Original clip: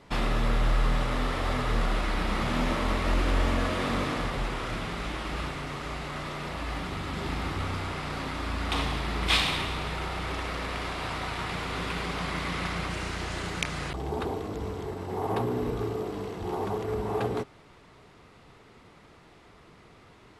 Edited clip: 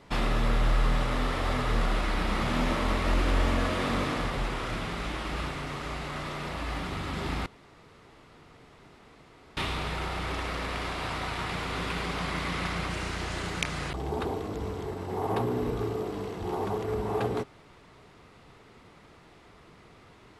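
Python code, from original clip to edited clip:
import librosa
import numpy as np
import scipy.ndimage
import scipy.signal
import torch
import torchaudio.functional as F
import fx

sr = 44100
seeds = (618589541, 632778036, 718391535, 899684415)

y = fx.edit(x, sr, fx.room_tone_fill(start_s=7.46, length_s=2.11), tone=tone)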